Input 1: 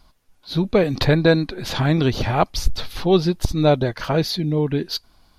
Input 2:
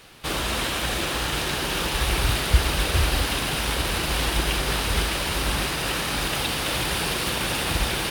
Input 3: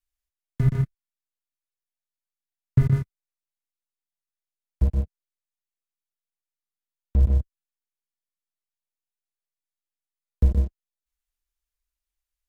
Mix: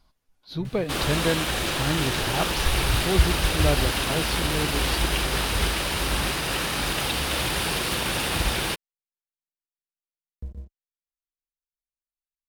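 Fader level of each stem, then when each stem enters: -9.5, -0.5, -17.5 dB; 0.00, 0.65, 0.00 s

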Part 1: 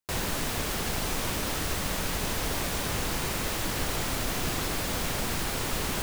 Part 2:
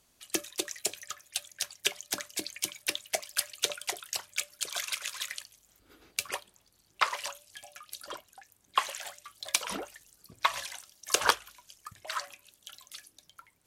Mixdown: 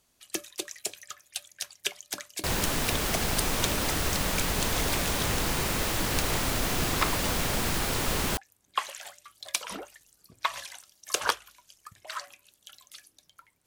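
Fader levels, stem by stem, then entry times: +2.0, -2.0 dB; 2.35, 0.00 s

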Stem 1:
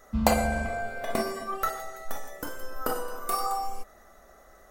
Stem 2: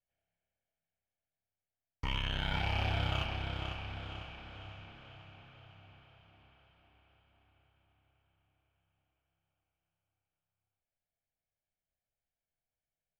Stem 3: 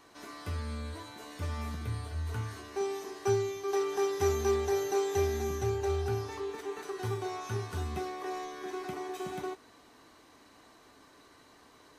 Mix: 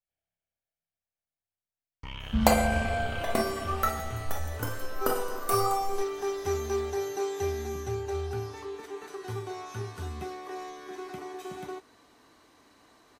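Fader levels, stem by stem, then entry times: +1.0, -5.5, -1.5 dB; 2.20, 0.00, 2.25 s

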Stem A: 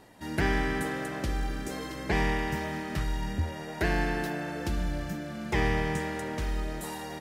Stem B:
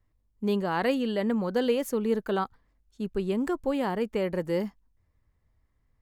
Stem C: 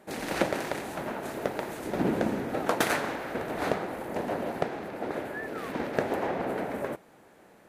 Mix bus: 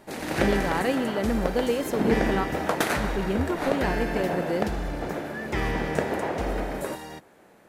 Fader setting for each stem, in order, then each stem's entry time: -1.0, 0.0, +1.0 dB; 0.00, 0.00, 0.00 s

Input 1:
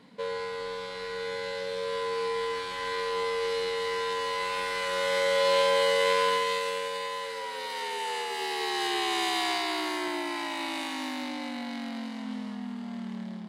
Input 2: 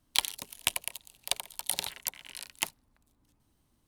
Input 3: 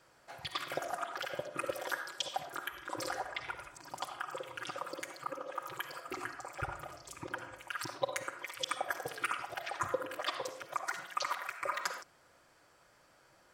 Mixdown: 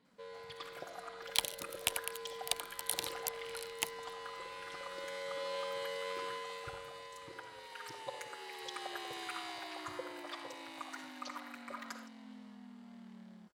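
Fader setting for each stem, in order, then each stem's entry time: -16.5, -5.0, -10.5 dB; 0.00, 1.20, 0.05 s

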